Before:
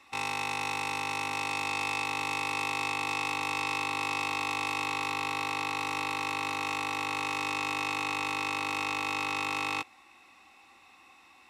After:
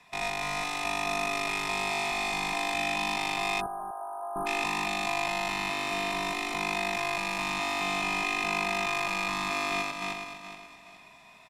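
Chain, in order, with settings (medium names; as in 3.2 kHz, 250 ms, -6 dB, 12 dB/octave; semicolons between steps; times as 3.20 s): backward echo that repeats 211 ms, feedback 56%, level -2.5 dB; frequency shift -110 Hz; 3.66–4.36 s: ladder high-pass 540 Hz, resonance 55%; delay 245 ms -11.5 dB; 3.61–4.46 s: spectral selection erased 1.7–8.8 kHz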